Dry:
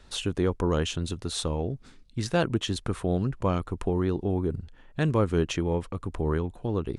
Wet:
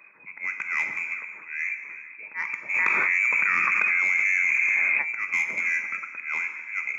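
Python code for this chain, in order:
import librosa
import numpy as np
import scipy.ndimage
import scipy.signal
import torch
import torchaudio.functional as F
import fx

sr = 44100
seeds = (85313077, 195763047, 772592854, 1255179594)

y = fx.low_shelf(x, sr, hz=290.0, db=-6.0)
y = fx.freq_invert(y, sr, carrier_hz=2500)
y = fx.peak_eq(y, sr, hz=710.0, db=-8.0, octaves=0.48)
y = fx.notch(y, sr, hz=760.0, q=12.0)
y = fx.echo_feedback(y, sr, ms=446, feedback_pct=39, wet_db=-18)
y = fx.auto_swell(y, sr, attack_ms=185.0)
y = scipy.signal.sosfilt(scipy.signal.butter(4, 180.0, 'highpass', fs=sr, output='sos'), y)
y = 10.0 ** (-20.5 / 20.0) * np.tanh(y / 10.0 ** (-20.5 / 20.0))
y = fx.rev_gated(y, sr, seeds[0], gate_ms=430, shape='falling', drr_db=5.5)
y = fx.env_flatten(y, sr, amount_pct=100, at=(2.73, 5.01), fade=0.02)
y = F.gain(torch.from_numpy(y), 4.5).numpy()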